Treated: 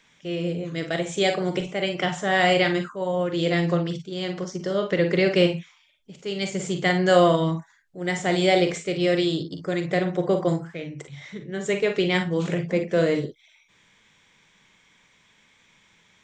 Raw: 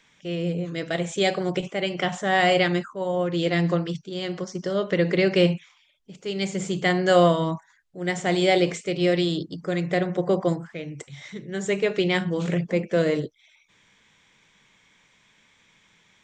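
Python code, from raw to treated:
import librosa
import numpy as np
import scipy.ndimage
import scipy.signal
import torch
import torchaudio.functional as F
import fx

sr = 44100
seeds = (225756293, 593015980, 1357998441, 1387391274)

y = fx.high_shelf(x, sr, hz=fx.line((10.87, 7800.0), (11.64, 5300.0)), db=-10.5, at=(10.87, 11.64), fade=0.02)
y = fx.room_early_taps(y, sr, ms=(43, 55), db=(-9.5, -11.5))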